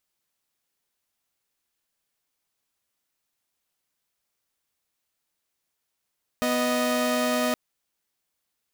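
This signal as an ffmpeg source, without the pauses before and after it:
-f lavfi -i "aevalsrc='0.075*((2*mod(246.94*t,1)-1)+(2*mod(622.25*t,1)-1))':d=1.12:s=44100"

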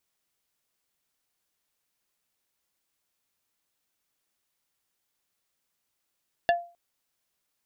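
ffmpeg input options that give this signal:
-f lavfi -i "aevalsrc='0.158*pow(10,-3*t/0.35)*sin(2*PI*692*t)+0.0891*pow(10,-3*t/0.117)*sin(2*PI*1730*t)+0.0501*pow(10,-3*t/0.066)*sin(2*PI*2768*t)+0.0282*pow(10,-3*t/0.051)*sin(2*PI*3460*t)+0.0158*pow(10,-3*t/0.037)*sin(2*PI*4498*t)':d=0.26:s=44100"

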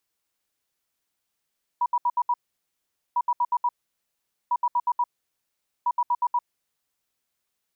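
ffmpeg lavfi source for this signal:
-f lavfi -i "aevalsrc='0.112*sin(2*PI*969*t)*clip(min(mod(mod(t,1.35),0.12),0.05-mod(mod(t,1.35),0.12))/0.005,0,1)*lt(mod(t,1.35),0.6)':d=5.4:s=44100"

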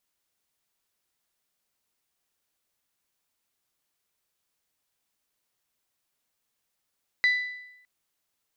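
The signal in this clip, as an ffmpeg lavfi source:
-f lavfi -i "aevalsrc='0.141*pow(10,-3*t/0.89)*sin(2*PI*1990*t)+0.0355*pow(10,-3*t/0.723)*sin(2*PI*3980*t)+0.00891*pow(10,-3*t/0.684)*sin(2*PI*4776*t)+0.00224*pow(10,-3*t/0.64)*sin(2*PI*5970*t)+0.000562*pow(10,-3*t/0.587)*sin(2*PI*7960*t)':d=0.61:s=44100"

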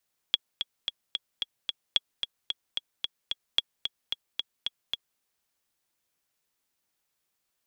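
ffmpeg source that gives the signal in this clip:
-f lavfi -i "aevalsrc='pow(10,(-8.5-7.5*gte(mod(t,6*60/222),60/222))/20)*sin(2*PI*3340*mod(t,60/222))*exp(-6.91*mod(t,60/222)/0.03)':d=4.86:s=44100"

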